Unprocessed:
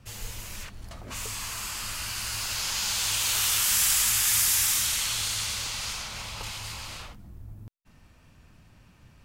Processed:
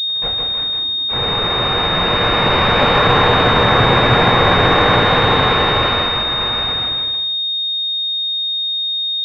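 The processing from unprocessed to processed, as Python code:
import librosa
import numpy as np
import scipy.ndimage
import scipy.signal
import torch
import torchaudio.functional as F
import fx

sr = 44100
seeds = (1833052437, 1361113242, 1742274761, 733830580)

p1 = fx.doppler_pass(x, sr, speed_mps=8, closest_m=7.0, pass_at_s=3.93)
p2 = fx.rider(p1, sr, range_db=4, speed_s=0.5)
p3 = p1 + F.gain(torch.from_numpy(p2), -2.5).numpy()
p4 = fx.fuzz(p3, sr, gain_db=39.0, gate_db=-37.0)
p5 = scipy.signal.sosfilt(scipy.signal.butter(2, 57.0, 'highpass', fs=sr, output='sos'), p4)
p6 = fx.tilt_shelf(p5, sr, db=-4.0, hz=970.0)
p7 = p6 + 0.65 * np.pad(p6, (int(3.2 * sr / 1000.0), 0))[:len(p6)]
p8 = p7 + fx.echo_feedback(p7, sr, ms=158, feedback_pct=27, wet_db=-3.0, dry=0)
p9 = fx.room_shoebox(p8, sr, seeds[0], volume_m3=82.0, walls='mixed', distance_m=3.3)
p10 = fx.pwm(p9, sr, carrier_hz=3700.0)
y = F.gain(torch.from_numpy(p10), -12.0).numpy()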